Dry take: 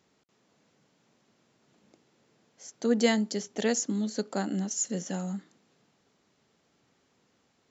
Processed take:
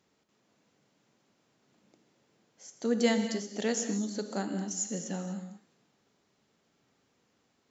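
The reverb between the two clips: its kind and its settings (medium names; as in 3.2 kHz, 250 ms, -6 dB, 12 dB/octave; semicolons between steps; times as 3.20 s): gated-style reverb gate 270 ms flat, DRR 6.5 dB; trim -3.5 dB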